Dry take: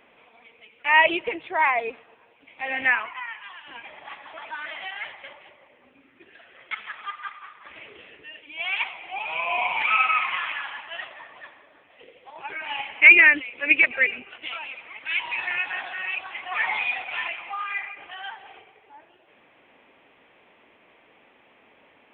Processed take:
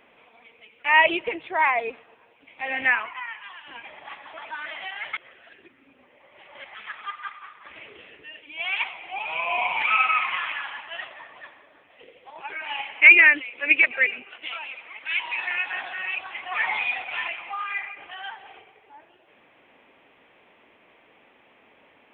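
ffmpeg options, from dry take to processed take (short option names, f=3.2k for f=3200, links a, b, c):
-filter_complex "[0:a]asettb=1/sr,asplit=3[a][b][c];[a]atrim=end=12.404[d];[b]atrim=start=12.4:end=15.72,asetpts=PTS-STARTPTS,afade=t=in:d=0.004:c=qsin,afade=t=out:st=3.316:d=0.004:c=qsin,lowshelf=f=200:g=-10[e];[c]atrim=start=15.716[f];[d][e]acrossfade=d=0.004:c1=hsin:c2=qsin[g];[g][f]acrossfade=d=0.004:c1=qsin:c2=hsin,asplit=3[h][i][j];[h]atrim=end=5.132[k];[i]atrim=start=5.128:end=6.752,asetpts=PTS-STARTPTS,areverse[l];[j]atrim=start=6.748[m];[k][l]acrossfade=d=0.004:c1=hsin:c2=hsin[n];[n][m]acrossfade=d=0.004:c1=hsin:c2=hsin"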